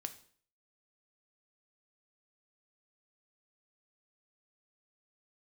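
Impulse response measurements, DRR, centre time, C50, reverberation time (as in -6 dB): 8.0 dB, 6 ms, 14.0 dB, 0.50 s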